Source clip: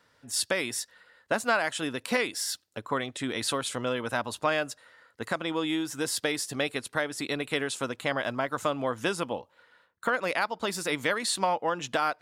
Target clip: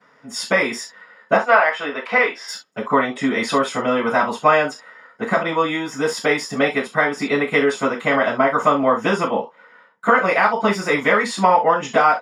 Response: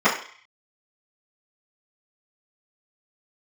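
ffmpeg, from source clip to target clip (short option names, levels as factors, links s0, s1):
-filter_complex "[0:a]asettb=1/sr,asplit=3[s0][s1][s2];[s0]atrim=end=1.364[s3];[s1]atrim=start=1.36:end=2.48,asetpts=PTS-STARTPTS,afade=t=in:d=0.004:c=qsin,afade=t=out:st=1.116:d=0.004:c=qsin,acrossover=split=390 4300:gain=0.141 1 0.112[s4][s5][s6];[s4][s5][s6]amix=inputs=3:normalize=0[s7];[s2]atrim=start=2.476[s8];[s3][s7]acrossfade=d=0.004:c1=hsin:c2=qsin[s9];[s9][s8]acrossfade=d=0.004:c1=qsin:c2=hsin[s10];[1:a]atrim=start_sample=2205,atrim=end_sample=3528[s11];[s10][s11]afir=irnorm=-1:irlink=0,volume=0.376"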